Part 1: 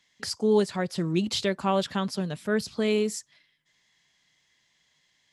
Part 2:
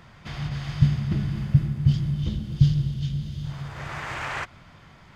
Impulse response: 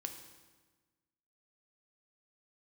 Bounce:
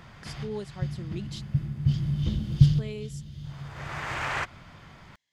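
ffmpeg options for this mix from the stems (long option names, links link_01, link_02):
-filter_complex "[0:a]volume=-13.5dB,asplit=3[link_01][link_02][link_03];[link_01]atrim=end=1.42,asetpts=PTS-STARTPTS,afade=type=out:start_time=1.416:duration=0.004:curve=hsin[link_04];[link_02]atrim=start=1.42:end=2.62,asetpts=PTS-STARTPTS,volume=0[link_05];[link_03]atrim=start=2.62,asetpts=PTS-STARTPTS,afade=type=in:duration=0.004:curve=hsin[link_06];[link_04][link_05][link_06]concat=n=3:v=0:a=1,asplit=2[link_07][link_08];[1:a]volume=1dB[link_09];[link_08]apad=whole_len=227411[link_10];[link_09][link_10]sidechaincompress=threshold=-49dB:ratio=4:attack=34:release=1120[link_11];[link_07][link_11]amix=inputs=2:normalize=0"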